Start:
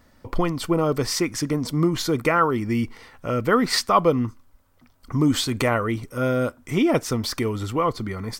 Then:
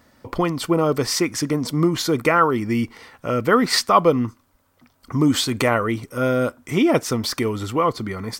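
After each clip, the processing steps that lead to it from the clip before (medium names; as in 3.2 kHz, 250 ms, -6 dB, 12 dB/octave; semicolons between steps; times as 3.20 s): high-pass 120 Hz 6 dB/octave; trim +3 dB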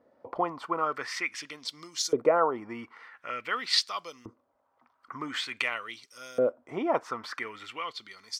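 LFO band-pass saw up 0.47 Hz 460–6700 Hz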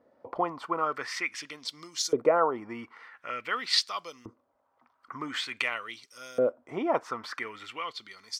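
no audible change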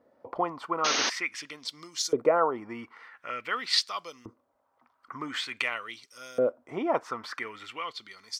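painted sound noise, 0.84–1.10 s, 220–6600 Hz -27 dBFS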